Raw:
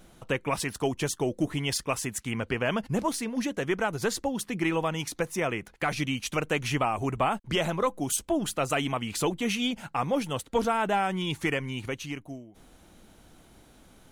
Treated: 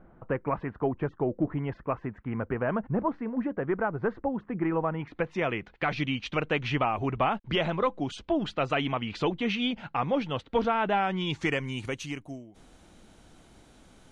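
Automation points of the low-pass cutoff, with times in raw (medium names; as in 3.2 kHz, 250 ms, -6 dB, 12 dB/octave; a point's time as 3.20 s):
low-pass 24 dB/octave
4.92 s 1.6 kHz
5.39 s 4 kHz
10.97 s 4 kHz
11.78 s 9.5 kHz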